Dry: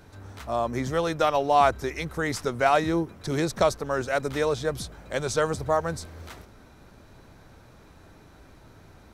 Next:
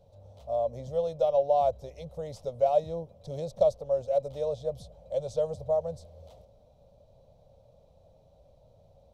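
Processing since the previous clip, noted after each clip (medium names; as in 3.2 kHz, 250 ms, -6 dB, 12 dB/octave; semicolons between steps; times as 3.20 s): FFT filter 160 Hz 0 dB, 350 Hz -17 dB, 550 Hz +13 dB, 1.6 kHz -28 dB, 3.3 kHz -6 dB, 10 kHz -12 dB; trim -8.5 dB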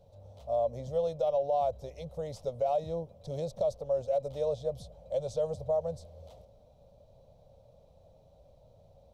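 peak limiter -21.5 dBFS, peak gain reduction 9 dB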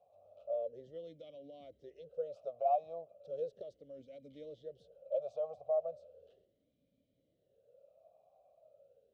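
talking filter a-i 0.36 Hz; trim +2 dB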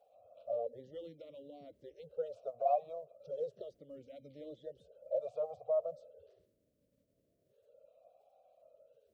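coarse spectral quantiser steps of 30 dB; trim +1 dB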